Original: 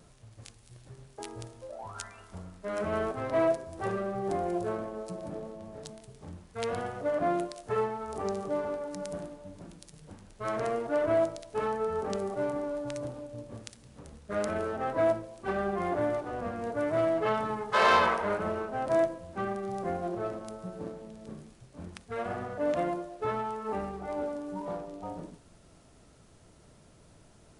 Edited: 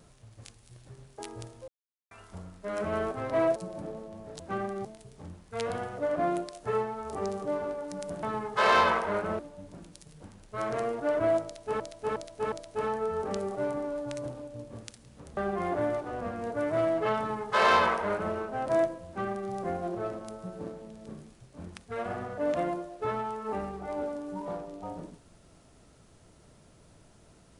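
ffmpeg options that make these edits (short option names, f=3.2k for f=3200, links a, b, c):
-filter_complex "[0:a]asplit=12[a][b][c][d][e][f][g][h][i][j][k][l];[a]atrim=end=1.68,asetpts=PTS-STARTPTS,afade=t=out:st=1.676:d=0.004:c=hsin[m];[b]atrim=start=1.68:end=2.11,asetpts=PTS-STARTPTS,volume=0[n];[c]atrim=start=2.11:end=3.562,asetpts=PTS-STARTPTS,afade=t=in:d=0.004:c=hsin[o];[d]atrim=start=5.038:end=5.882[p];[e]atrim=start=19.268:end=19.722[q];[f]atrim=start=5.878:end=9.262[r];[g]atrim=start=17.388:end=18.552[s];[h]atrim=start=9.258:end=11.672[t];[i]atrim=start=11.308:end=11.672[u];[j]atrim=start=11.308:end=11.672[v];[k]atrim=start=11.308:end=14.162[w];[l]atrim=start=15.568[x];[m][n][o]concat=n=3:v=0:a=1[y];[y][p]acrossfade=d=0.004:c1=hsin:c2=hsin[z];[z][q]acrossfade=d=0.004:c1=hsin:c2=hsin[aa];[aa][r]acrossfade=d=0.004:c1=hsin:c2=hsin[ab];[ab][s]acrossfade=d=0.004:c1=hsin:c2=hsin[ac];[ac][t]acrossfade=d=0.004:c1=hsin:c2=hsin[ad];[ad][u]acrossfade=d=0.004:c1=hsin:c2=hsin[ae];[ae][v]acrossfade=d=0.004:c1=hsin:c2=hsin[af];[af][w]acrossfade=d=0.004:c1=hsin:c2=hsin[ag];[ag][x]acrossfade=d=0.004:c1=hsin:c2=hsin"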